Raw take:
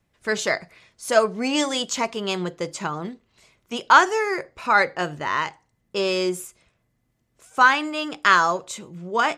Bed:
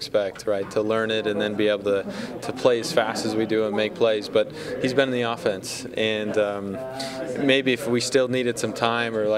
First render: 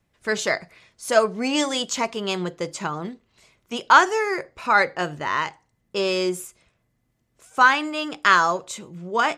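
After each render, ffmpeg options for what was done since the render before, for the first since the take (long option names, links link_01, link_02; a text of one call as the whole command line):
ffmpeg -i in.wav -af anull out.wav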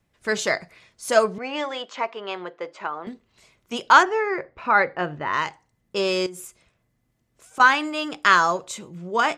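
ffmpeg -i in.wav -filter_complex "[0:a]asettb=1/sr,asplit=3[link_01][link_02][link_03];[link_01]atrim=end=1.384[link_04];[link_02]atrim=start=1.38:end=3.07,asetpts=PTS-STARTPTS,afade=type=in:duration=0.004:curve=qsin,afade=type=out:start_time=1.686:duration=0.004:curve=qsin,highpass=510,lowpass=2200[link_05];[link_03]atrim=start=3.066[link_06];[link_04][link_05]acrossfade=duration=0.004:curve1=hsin:curve2=qsin[link_07];[link_07][link_06]acrossfade=duration=0.004:curve1=qsin:curve2=hsin,asplit=3[link_08][link_09][link_10];[link_08]afade=type=out:start_time=4.02:duration=0.02[link_11];[link_09]lowpass=2400,afade=type=in:start_time=4.02:duration=0.02,afade=type=out:start_time=5.32:duration=0.02[link_12];[link_10]afade=type=in:start_time=5.32:duration=0.02[link_13];[link_11][link_12][link_13]amix=inputs=3:normalize=0,asettb=1/sr,asplit=3[link_14][link_15][link_16];[link_14]atrim=end=6.264[link_17];[link_15]atrim=start=6.26:end=7.6,asetpts=PTS-STARTPTS,afade=type=in:duration=0.004:curve=qsin,afade=type=out:start_time=1.336:duration=0.004:curve=qsin,acompressor=threshold=-33dB:ratio=16:attack=3.2:release=140:knee=1:detection=peak[link_18];[link_16]atrim=start=7.596[link_19];[link_17][link_18]acrossfade=duration=0.004:curve1=hsin:curve2=qsin[link_20];[link_20][link_19]acrossfade=duration=0.004:curve1=qsin:curve2=hsin" out.wav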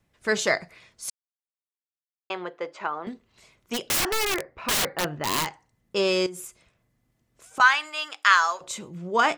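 ffmpeg -i in.wav -filter_complex "[0:a]asplit=3[link_01][link_02][link_03];[link_01]afade=type=out:start_time=3.73:duration=0.02[link_04];[link_02]aeval=exprs='(mod(8.41*val(0)+1,2)-1)/8.41':channel_layout=same,afade=type=in:start_time=3.73:duration=0.02,afade=type=out:start_time=5.45:duration=0.02[link_05];[link_03]afade=type=in:start_time=5.45:duration=0.02[link_06];[link_04][link_05][link_06]amix=inputs=3:normalize=0,asettb=1/sr,asplit=3[link_07][link_08][link_09];[link_07]atrim=end=7.604[link_10];[link_08]atrim=start=7.6:end=8.61,asetpts=PTS-STARTPTS,afade=type=in:duration=0.004:curve=qsin,afade=type=out:start_time=1.006:duration=0.004:curve=qsin,highpass=1100[link_11];[link_09]atrim=start=8.606[link_12];[link_10][link_11]acrossfade=duration=0.004:curve1=hsin:curve2=qsin[link_13];[link_13][link_12]acrossfade=duration=0.004:curve1=qsin:curve2=hsin,asplit=3[link_14][link_15][link_16];[link_14]atrim=end=1.1,asetpts=PTS-STARTPTS,afade=type=out:start_time=1.096:duration=0.004:curve=hsin[link_17];[link_15]atrim=start=1.1:end=2.3,asetpts=PTS-STARTPTS,volume=0[link_18];[link_16]atrim=start=2.3,asetpts=PTS-STARTPTS,afade=type=in:duration=0.004:curve=hsin[link_19];[link_17][link_18][link_19]concat=n=3:v=0:a=1" out.wav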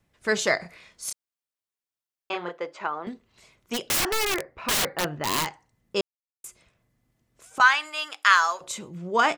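ffmpeg -i in.wav -filter_complex "[0:a]asplit=3[link_01][link_02][link_03];[link_01]afade=type=out:start_time=0.59:duration=0.02[link_04];[link_02]asplit=2[link_05][link_06];[link_06]adelay=29,volume=-3dB[link_07];[link_05][link_07]amix=inputs=2:normalize=0,afade=type=in:start_time=0.59:duration=0.02,afade=type=out:start_time=2.57:duration=0.02[link_08];[link_03]afade=type=in:start_time=2.57:duration=0.02[link_09];[link_04][link_08][link_09]amix=inputs=3:normalize=0,asettb=1/sr,asplit=3[link_10][link_11][link_12];[link_10]atrim=end=7.824[link_13];[link_11]atrim=start=7.82:end=8.72,asetpts=PTS-STARTPTS,afade=type=in:duration=0.004:curve=qsin,afade=type=out:start_time=0.896:duration=0.004:curve=qsin,equalizer=frequency=11000:width_type=o:width=0.28:gain=9[link_14];[link_12]atrim=start=8.716[link_15];[link_13][link_14]acrossfade=duration=0.004:curve1=hsin:curve2=qsin[link_16];[link_16][link_15]acrossfade=duration=0.004:curve1=qsin:curve2=hsin,asplit=3[link_17][link_18][link_19];[link_17]atrim=end=6.01,asetpts=PTS-STARTPTS,afade=type=out:start_time=6.006:duration=0.004:curve=hsin[link_20];[link_18]atrim=start=6.01:end=6.44,asetpts=PTS-STARTPTS,volume=0[link_21];[link_19]atrim=start=6.44,asetpts=PTS-STARTPTS,afade=type=in:duration=0.004:curve=hsin[link_22];[link_20][link_21][link_22]concat=n=3:v=0:a=1" out.wav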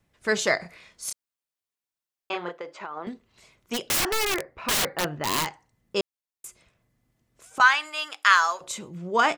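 ffmpeg -i in.wav -filter_complex "[0:a]asettb=1/sr,asplit=3[link_01][link_02][link_03];[link_01]atrim=end=2.504[link_04];[link_02]atrim=start=2.5:end=2.97,asetpts=PTS-STARTPTS,afade=type=in:duration=0.004:curve=qsin,afade=type=out:start_time=0.466:duration=0.004:curve=qsin,acompressor=threshold=-31dB:ratio=6:attack=3.2:release=140:knee=1:detection=peak[link_05];[link_03]atrim=start=2.966[link_06];[link_04][link_05]acrossfade=duration=0.004:curve1=hsin:curve2=qsin[link_07];[link_07][link_06]acrossfade=duration=0.004:curve1=qsin:curve2=hsin" out.wav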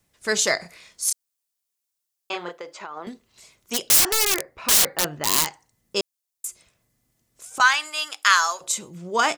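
ffmpeg -i in.wav -af "bass=frequency=250:gain=-2,treble=frequency=4000:gain=11" out.wav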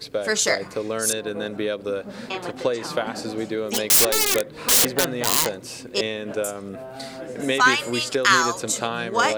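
ffmpeg -i in.wav -i bed.wav -filter_complex "[1:a]volume=-4.5dB[link_01];[0:a][link_01]amix=inputs=2:normalize=0" out.wav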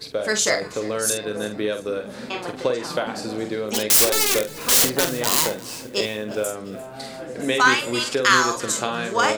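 ffmpeg -i in.wav -filter_complex "[0:a]asplit=2[link_01][link_02];[link_02]adelay=47,volume=-8dB[link_03];[link_01][link_03]amix=inputs=2:normalize=0,aecho=1:1:349|698|1047|1396:0.1|0.048|0.023|0.0111" out.wav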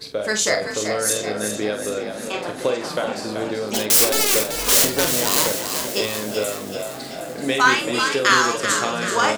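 ffmpeg -i in.wav -filter_complex "[0:a]asplit=2[link_01][link_02];[link_02]adelay=29,volume=-10.5dB[link_03];[link_01][link_03]amix=inputs=2:normalize=0,asplit=2[link_04][link_05];[link_05]asplit=7[link_06][link_07][link_08][link_09][link_10][link_11][link_12];[link_06]adelay=383,afreqshift=41,volume=-7.5dB[link_13];[link_07]adelay=766,afreqshift=82,volume=-12.4dB[link_14];[link_08]adelay=1149,afreqshift=123,volume=-17.3dB[link_15];[link_09]adelay=1532,afreqshift=164,volume=-22.1dB[link_16];[link_10]adelay=1915,afreqshift=205,volume=-27dB[link_17];[link_11]adelay=2298,afreqshift=246,volume=-31.9dB[link_18];[link_12]adelay=2681,afreqshift=287,volume=-36.8dB[link_19];[link_13][link_14][link_15][link_16][link_17][link_18][link_19]amix=inputs=7:normalize=0[link_20];[link_04][link_20]amix=inputs=2:normalize=0" out.wav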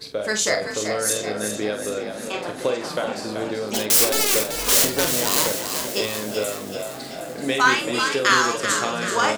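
ffmpeg -i in.wav -af "volume=-1.5dB" out.wav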